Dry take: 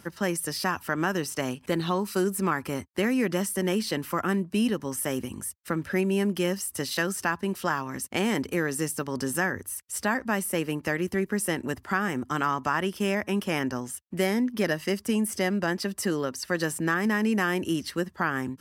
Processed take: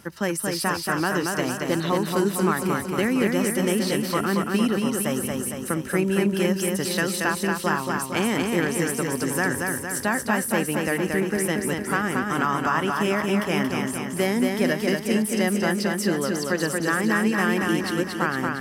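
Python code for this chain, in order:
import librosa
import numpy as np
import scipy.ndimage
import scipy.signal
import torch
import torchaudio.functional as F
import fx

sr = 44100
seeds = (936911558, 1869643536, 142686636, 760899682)

p1 = x + fx.echo_feedback(x, sr, ms=229, feedback_pct=59, wet_db=-3.5, dry=0)
y = F.gain(torch.from_numpy(p1), 2.0).numpy()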